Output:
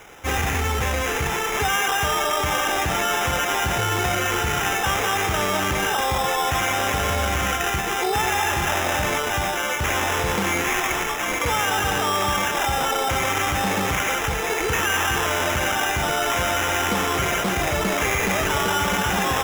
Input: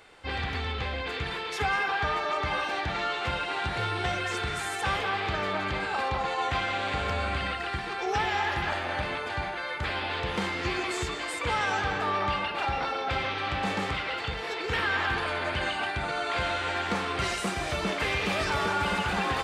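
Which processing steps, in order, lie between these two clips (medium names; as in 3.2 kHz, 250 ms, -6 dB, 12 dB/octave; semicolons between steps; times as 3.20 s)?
10.64–11.28 s: high-pass 570 Hz 12 dB/octave; in parallel at -1 dB: compressor with a negative ratio -32 dBFS; on the sum: sample-and-hold 10×; trim +3 dB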